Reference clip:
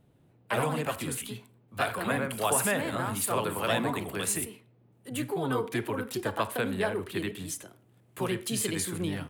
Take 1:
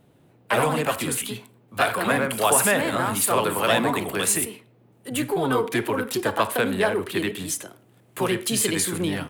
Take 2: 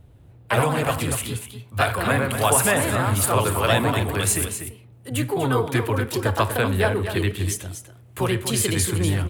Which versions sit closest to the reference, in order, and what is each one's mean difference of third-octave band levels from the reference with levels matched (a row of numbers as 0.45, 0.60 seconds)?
1, 2; 1.5, 3.5 decibels